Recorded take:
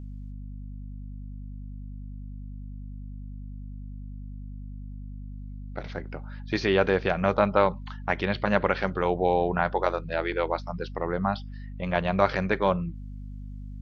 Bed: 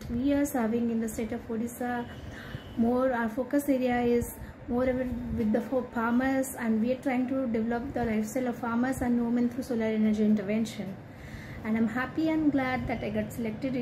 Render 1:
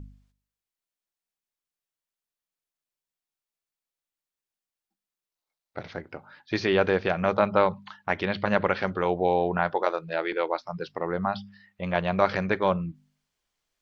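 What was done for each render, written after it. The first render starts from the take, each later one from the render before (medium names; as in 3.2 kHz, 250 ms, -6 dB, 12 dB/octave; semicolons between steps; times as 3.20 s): de-hum 50 Hz, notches 5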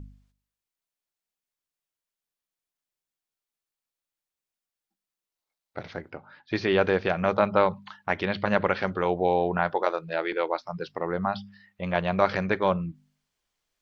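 6.10–6.70 s: distance through air 92 m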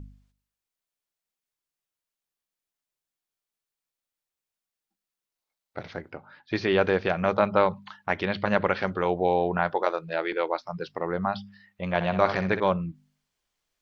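11.94–12.60 s: flutter echo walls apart 11 m, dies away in 0.39 s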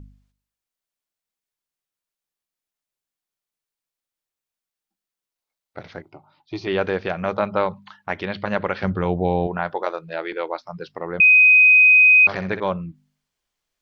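6.02–6.67 s: static phaser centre 330 Hz, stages 8; 8.83–9.47 s: tone controls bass +13 dB, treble -1 dB; 11.20–12.27 s: bleep 2.51 kHz -8.5 dBFS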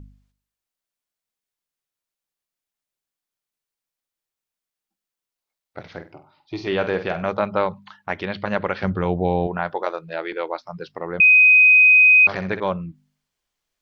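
5.86–7.23 s: flutter echo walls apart 8.3 m, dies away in 0.29 s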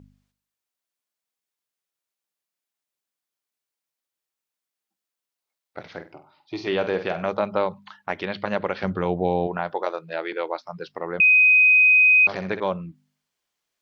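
high-pass 200 Hz 6 dB/octave; dynamic bell 1.6 kHz, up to -6 dB, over -30 dBFS, Q 1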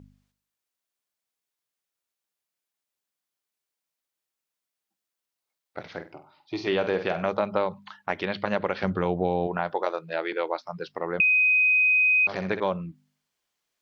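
compression, threshold -19 dBFS, peak gain reduction 5.5 dB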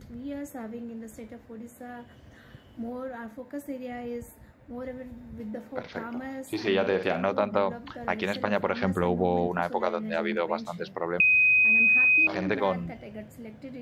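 add bed -10 dB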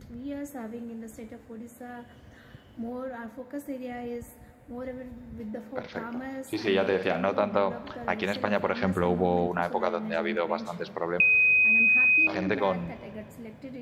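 Schroeder reverb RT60 2.7 s, combs from 28 ms, DRR 16 dB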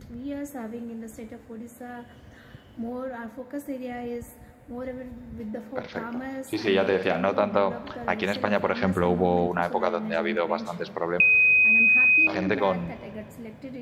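trim +2.5 dB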